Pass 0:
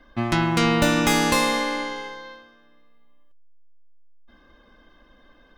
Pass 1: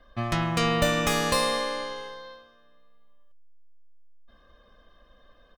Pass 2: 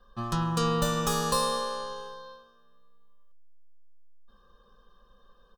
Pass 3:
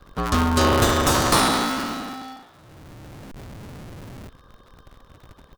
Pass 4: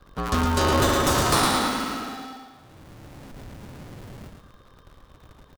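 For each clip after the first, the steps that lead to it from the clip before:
comb 1.7 ms, depth 58%; gain -4.5 dB
fixed phaser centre 430 Hz, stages 8
cycle switcher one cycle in 2, inverted; gain +8.5 dB
feedback echo 0.112 s, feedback 42%, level -5 dB; gain -3.5 dB

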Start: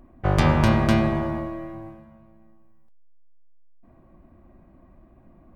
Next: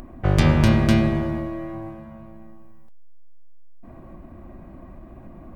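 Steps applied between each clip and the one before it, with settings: dynamic EQ 950 Hz, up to -8 dB, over -39 dBFS, Q 0.94; in parallel at +2 dB: upward compressor, threshold -29 dBFS; on the sum: gain -4 dB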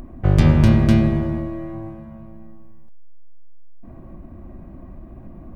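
low shelf 410 Hz +8 dB; gain -3.5 dB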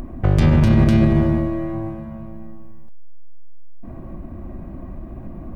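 limiter -11.5 dBFS, peak gain reduction 10 dB; gain +5.5 dB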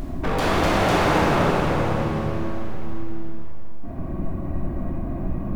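wavefolder -20.5 dBFS; plate-style reverb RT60 3.8 s, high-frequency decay 1×, DRR -6 dB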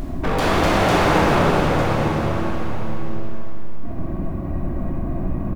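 echo 0.903 s -10.5 dB; gain +2.5 dB

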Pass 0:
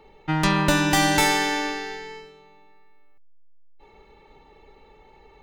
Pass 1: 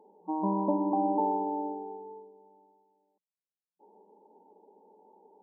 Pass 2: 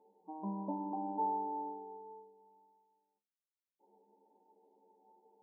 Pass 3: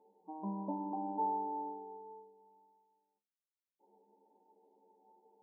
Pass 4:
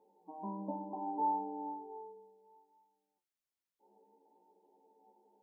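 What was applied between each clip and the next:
FFT band-pass 180–1100 Hz; gain -5 dB
metallic resonator 66 Hz, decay 0.29 s, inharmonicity 0.008; gain -2 dB
nothing audible
chorus 0.66 Hz, delay 16.5 ms, depth 2.4 ms; gain +3.5 dB

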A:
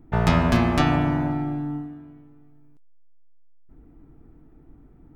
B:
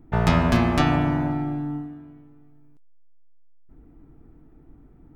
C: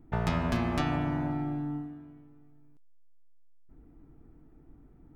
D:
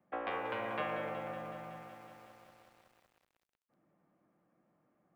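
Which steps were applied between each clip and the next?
nothing audible
compressor 2:1, threshold -23 dBFS, peak gain reduction 6.5 dB; gain -5 dB
mistuned SSB -130 Hz 460–3200 Hz; lo-fi delay 0.186 s, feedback 80%, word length 10-bit, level -10 dB; gain -3 dB

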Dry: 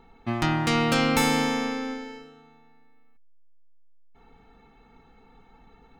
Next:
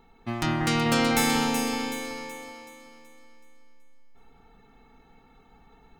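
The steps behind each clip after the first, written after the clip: high shelf 5800 Hz +9 dB; on a send: echo with dull and thin repeats by turns 0.188 s, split 2000 Hz, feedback 66%, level -2.5 dB; on the sum: gain -3.5 dB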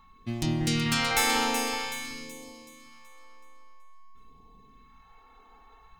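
phaser stages 2, 0.5 Hz, lowest notch 120–1300 Hz; whine 1100 Hz -57 dBFS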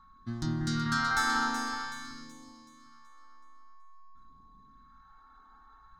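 EQ curve 300 Hz 0 dB, 490 Hz -16 dB, 1500 Hz +11 dB, 2500 Hz -21 dB, 3900 Hz -2 dB, 5900 Hz -3 dB, 13000 Hz -17 dB; gain -3.5 dB

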